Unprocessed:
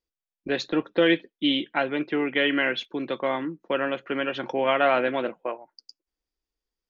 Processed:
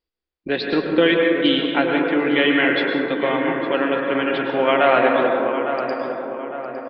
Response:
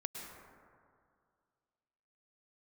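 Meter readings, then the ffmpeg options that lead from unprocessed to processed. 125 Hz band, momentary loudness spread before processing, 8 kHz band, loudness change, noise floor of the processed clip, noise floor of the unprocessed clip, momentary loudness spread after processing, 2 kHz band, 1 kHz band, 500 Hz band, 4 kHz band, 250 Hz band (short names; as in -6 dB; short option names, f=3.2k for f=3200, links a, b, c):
+6.5 dB, 10 LU, n/a, +6.5 dB, under -85 dBFS, under -85 dBFS, 10 LU, +6.5 dB, +7.0 dB, +7.5 dB, +5.0 dB, +7.0 dB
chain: -filter_complex "[0:a]asplit=2[a][b];[b]adelay=857,lowpass=f=1.7k:p=1,volume=-8dB,asplit=2[c][d];[d]adelay=857,lowpass=f=1.7k:p=1,volume=0.54,asplit=2[e][f];[f]adelay=857,lowpass=f=1.7k:p=1,volume=0.54,asplit=2[g][h];[h]adelay=857,lowpass=f=1.7k:p=1,volume=0.54,asplit=2[i][j];[j]adelay=857,lowpass=f=1.7k:p=1,volume=0.54,asplit=2[k][l];[l]adelay=857,lowpass=f=1.7k:p=1,volume=0.54[m];[a][c][e][g][i][k][m]amix=inputs=7:normalize=0[n];[1:a]atrim=start_sample=2205[o];[n][o]afir=irnorm=-1:irlink=0,aresample=11025,aresample=44100,volume=7dB"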